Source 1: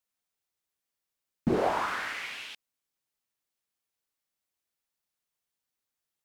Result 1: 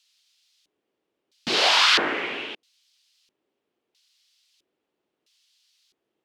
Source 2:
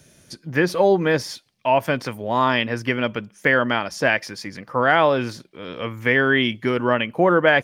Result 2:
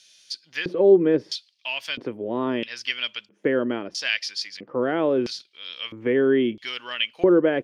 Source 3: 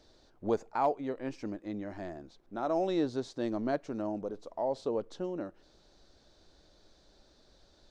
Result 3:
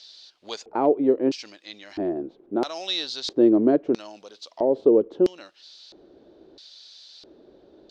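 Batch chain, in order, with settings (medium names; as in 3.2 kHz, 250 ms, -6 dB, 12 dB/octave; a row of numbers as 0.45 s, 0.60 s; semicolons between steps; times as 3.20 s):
peaking EQ 3 kHz +8 dB 0.87 oct; LFO band-pass square 0.76 Hz 360–4600 Hz; dynamic bell 800 Hz, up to -6 dB, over -44 dBFS, Q 1.5; peak normalisation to -6 dBFS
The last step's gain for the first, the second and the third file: +26.0 dB, +6.0 dB, +20.0 dB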